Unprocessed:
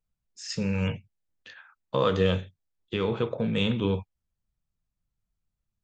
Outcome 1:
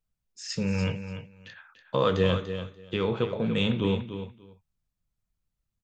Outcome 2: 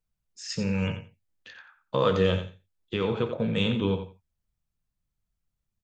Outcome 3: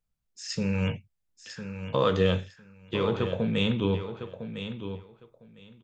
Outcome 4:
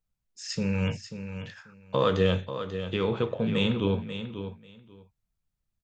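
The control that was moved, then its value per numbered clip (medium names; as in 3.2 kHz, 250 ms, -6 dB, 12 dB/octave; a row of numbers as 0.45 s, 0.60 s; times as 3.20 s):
feedback delay, time: 291 ms, 88 ms, 1005 ms, 539 ms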